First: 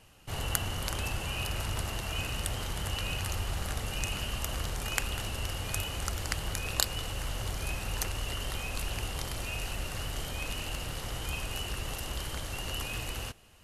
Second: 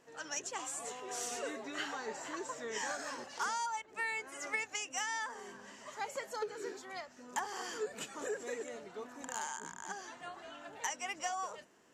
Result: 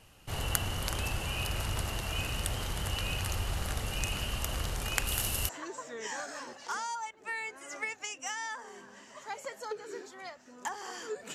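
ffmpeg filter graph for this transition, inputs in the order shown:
-filter_complex "[0:a]asettb=1/sr,asplit=3[a][b][c];[a]atrim=end=5.074[d];[b]atrim=start=5.07:end=5.49,asetpts=PTS-STARTPTS,afade=t=in:d=0.004:c=qsin,afade=t=out:st=0.416:d=0.004:c=qsin,aemphasis=mode=production:type=50fm[e];[c]atrim=start=5.486[f];[d][e]acrossfade=d=0.004:c1=hsin:c2=qsin[g];[g][f]acrossfade=d=0.004:c1=qsin:c2=hsin,apad=whole_dur=11.34,atrim=end=11.34,atrim=end=5.492[h];[1:a]atrim=start=2.198:end=8.05[i];[h][i]acrossfade=d=0.004:c1=hsin:c2=hsin"

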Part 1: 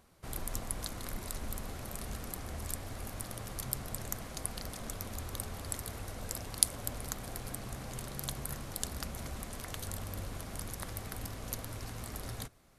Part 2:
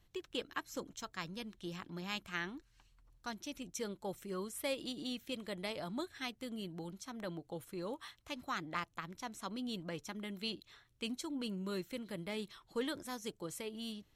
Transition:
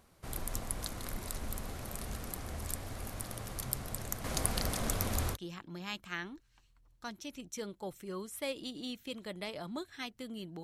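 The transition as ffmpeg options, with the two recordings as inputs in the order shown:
-filter_complex "[0:a]asettb=1/sr,asplit=3[a][b][c];[a]atrim=end=4.244[d];[b]atrim=start=4.24:end=5.37,asetpts=PTS-STARTPTS,afade=t=in:d=0.004:c=qsin,afade=t=out:st=1.126:d=0.004:c=qsin,aeval=exprs='0.251*sin(PI/2*1.58*val(0)/0.251)':c=same[e];[c]atrim=start=5.366[f];[d][e]acrossfade=d=0.004:c1=hsin:c2=qsin[g];[g][f]acrossfade=d=0.004:c1=qsin:c2=hsin,apad=whole_dur=10.63,atrim=end=10.63,atrim=end=5.37,asetpts=PTS-STARTPTS[h];[1:a]atrim=start=1.53:end=6.85,asetpts=PTS-STARTPTS[i];[h][i]acrossfade=d=0.06:c1=tri:c2=tri"

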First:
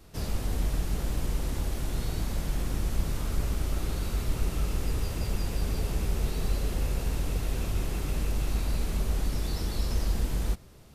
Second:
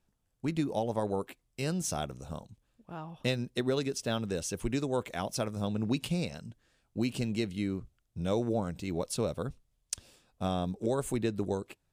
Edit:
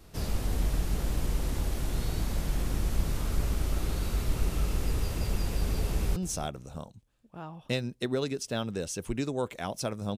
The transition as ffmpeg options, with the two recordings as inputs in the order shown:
-filter_complex "[0:a]apad=whole_dur=10.17,atrim=end=10.17,atrim=end=6.162[a];[1:a]atrim=start=1.708:end=5.72[b];[a][b]acrossfade=d=0.004:c1=hsin:c2=hsin,asplit=2[c][d];[d]afade=t=in:st=5.91:d=0.01,afade=t=out:st=6.16:d=0.01,aecho=0:1:310|620:0.16788|0.0335761[e];[c][e]amix=inputs=2:normalize=0"

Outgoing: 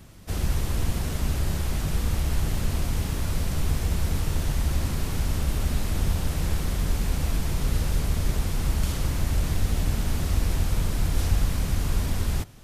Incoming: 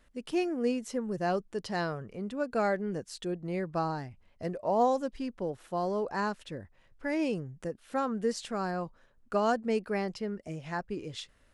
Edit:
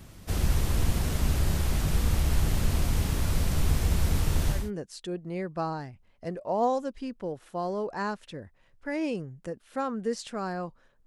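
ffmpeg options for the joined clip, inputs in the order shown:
-filter_complex "[0:a]apad=whole_dur=11.06,atrim=end=11.06,atrim=end=4.71,asetpts=PTS-STARTPTS[a];[1:a]atrim=start=2.67:end=9.24,asetpts=PTS-STARTPTS[b];[a][b]acrossfade=d=0.22:c1=tri:c2=tri"

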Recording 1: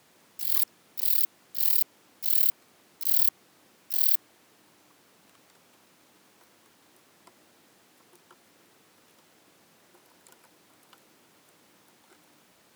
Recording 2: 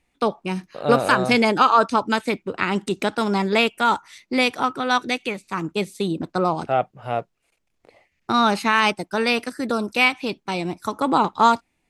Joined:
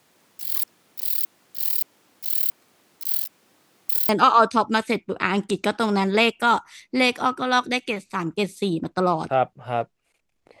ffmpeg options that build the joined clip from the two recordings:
-filter_complex "[0:a]apad=whole_dur=10.6,atrim=end=10.6,asplit=2[a][b];[a]atrim=end=3.092[c];[b]atrim=start=3.088:end=4.092,asetpts=PTS-STARTPTS,areverse[d];[1:a]atrim=start=1.468:end=7.98[e];[c][d]acrossfade=d=0.004:c1=hsin:c2=hsin[f];[f][e]acrossfade=d=0.004:c1=hsin:c2=hsin"

